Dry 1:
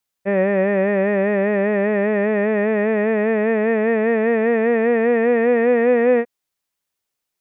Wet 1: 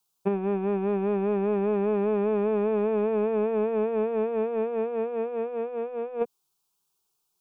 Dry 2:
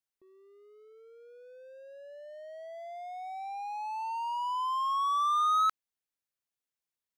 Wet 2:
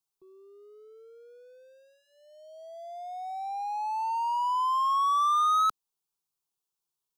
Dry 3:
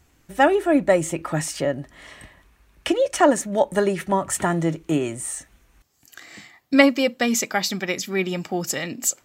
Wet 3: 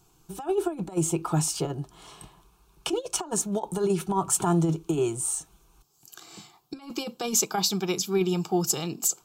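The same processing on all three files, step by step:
negative-ratio compressor -21 dBFS, ratio -0.5; fixed phaser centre 380 Hz, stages 8; match loudness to -27 LUFS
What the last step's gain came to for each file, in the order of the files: 0.0, +5.5, -0.5 dB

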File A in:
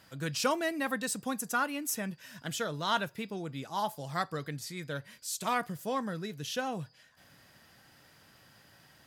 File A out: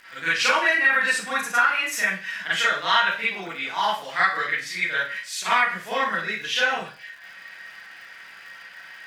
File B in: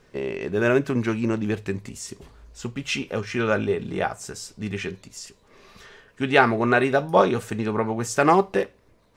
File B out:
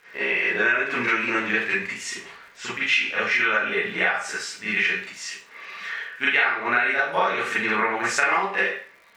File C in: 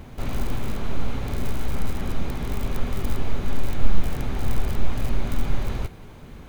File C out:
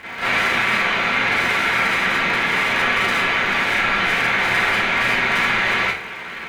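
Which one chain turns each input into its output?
band-pass 2000 Hz, Q 2.4; Schroeder reverb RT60 0.36 s, combs from 33 ms, DRR -10 dB; crackle 210/s -56 dBFS; compressor 10:1, threshold -28 dBFS; normalise peaks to -6 dBFS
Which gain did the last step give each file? +13.0, +10.0, +18.0 dB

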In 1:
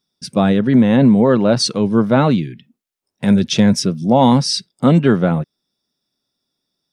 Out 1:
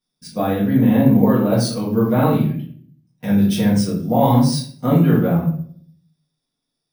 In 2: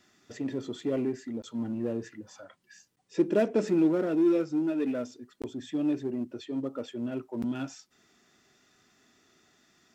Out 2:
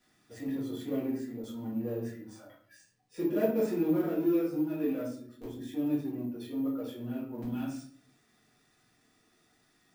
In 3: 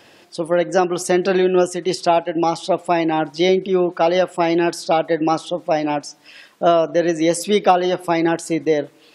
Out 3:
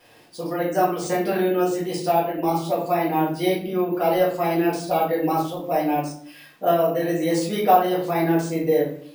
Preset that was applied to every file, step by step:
dynamic EQ 4200 Hz, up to -4 dB, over -38 dBFS, Q 0.79; shoebox room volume 63 m³, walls mixed, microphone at 1.8 m; careless resampling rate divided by 3×, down none, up hold; gain -12 dB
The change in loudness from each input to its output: -2.5, -3.0, -3.5 LU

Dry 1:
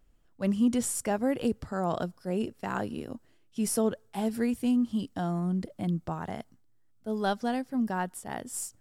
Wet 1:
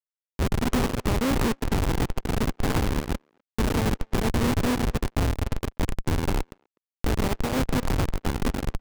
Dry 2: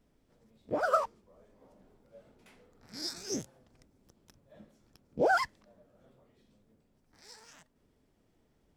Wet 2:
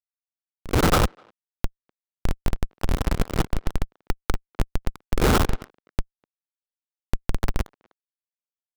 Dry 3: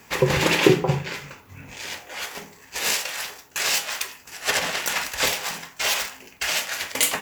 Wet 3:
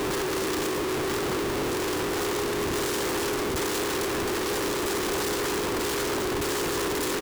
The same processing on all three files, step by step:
per-bin compression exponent 0.2; fixed phaser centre 640 Hz, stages 6; Schmitt trigger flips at -19.5 dBFS; speakerphone echo 0.25 s, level -14 dB; upward expander 2.5:1, over -41 dBFS; match loudness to -27 LUFS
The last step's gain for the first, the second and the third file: +7.0, +15.0, -10.5 dB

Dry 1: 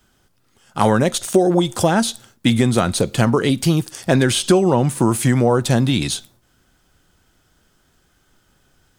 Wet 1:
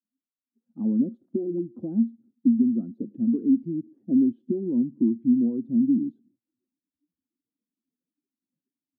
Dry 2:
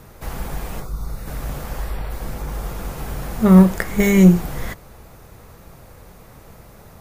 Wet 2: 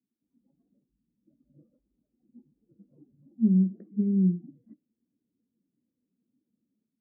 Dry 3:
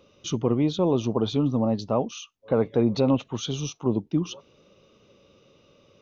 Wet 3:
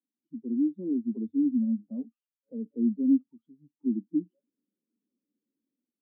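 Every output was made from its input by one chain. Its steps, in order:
spectral contrast raised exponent 1.6; Butterworth band-pass 260 Hz, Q 3.2; spectral noise reduction 18 dB; AGC gain up to 10 dB; gain -9 dB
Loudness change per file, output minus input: -7.5, -8.0, -4.0 LU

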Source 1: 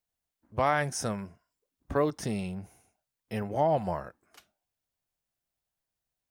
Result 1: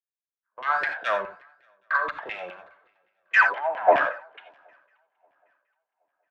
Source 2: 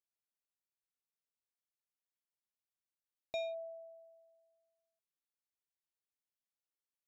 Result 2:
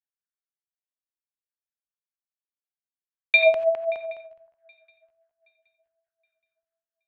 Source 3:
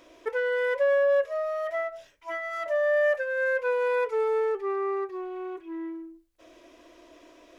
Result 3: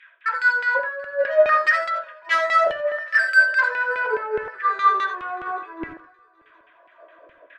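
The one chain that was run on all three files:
downsampling 8000 Hz; dynamic EQ 1600 Hz, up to +4 dB, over -41 dBFS, Q 2.5; negative-ratio compressor -29 dBFS, ratio -0.5; thirty-one-band EQ 100 Hz +7 dB, 250 Hz -4 dB, 400 Hz -7 dB, 800 Hz -5 dB, 1600 Hz +11 dB; LFO high-pass saw down 0.67 Hz 440–1700 Hz; soft clip -29.5 dBFS; vibrato 1.1 Hz 19 cents; LFO band-pass saw down 4.8 Hz 330–2500 Hz; swung echo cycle 0.772 s, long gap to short 3:1, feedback 55%, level -19 dB; non-linear reverb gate 0.11 s rising, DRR 7 dB; three-band expander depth 100%; normalise peaks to -6 dBFS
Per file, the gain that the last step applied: +15.0, +25.0, +16.5 dB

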